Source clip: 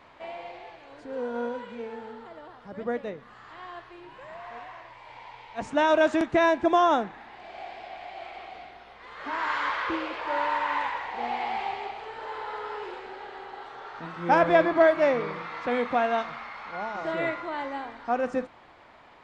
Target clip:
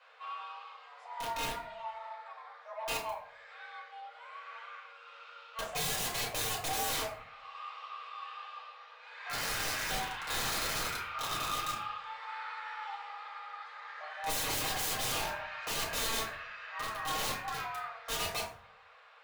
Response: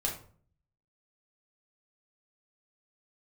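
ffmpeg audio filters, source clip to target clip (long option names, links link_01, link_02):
-filter_complex "[0:a]afreqshift=440,aeval=exprs='(mod(15.8*val(0)+1,2)-1)/15.8':channel_layout=same[link_01];[1:a]atrim=start_sample=2205[link_02];[link_01][link_02]afir=irnorm=-1:irlink=0,volume=-9dB"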